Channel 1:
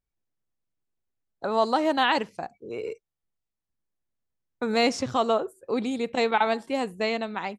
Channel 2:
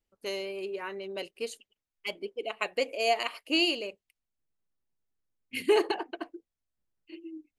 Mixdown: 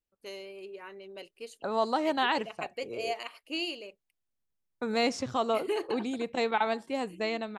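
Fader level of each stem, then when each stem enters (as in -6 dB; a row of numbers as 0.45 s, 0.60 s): -5.0 dB, -8.0 dB; 0.20 s, 0.00 s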